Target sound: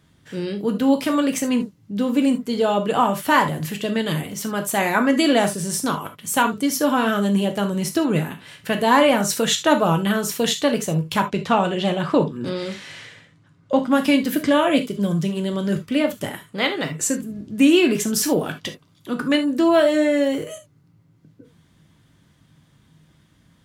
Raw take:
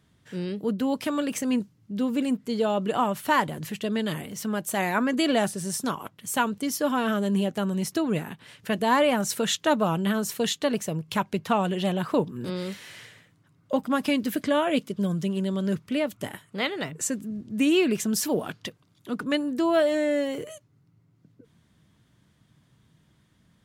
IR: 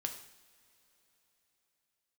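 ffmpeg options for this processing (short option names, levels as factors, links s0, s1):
-filter_complex "[0:a]asettb=1/sr,asplit=3[s0][s1][s2];[s0]atrim=end=11.204[s3];[s1]atrim=start=11.2:end=13.88,asetpts=PTS-STARTPTS,afade=t=in:d=0.004:c=qsin,afade=t=out:st=2.676:d=0.004:c=qsin,lowpass=7200[s4];[s2]atrim=start=13.876[s5];[s3][s4]acrossfade=d=0.004:c1=hsin:c2=qsin[s6];[s6][s5]acrossfade=d=0.004:c1=qsin:c2=hsin[s7];[1:a]atrim=start_sample=2205,afade=t=out:st=0.13:d=0.01,atrim=end_sample=6174[s8];[s7][s8]afir=irnorm=-1:irlink=0,volume=2.11"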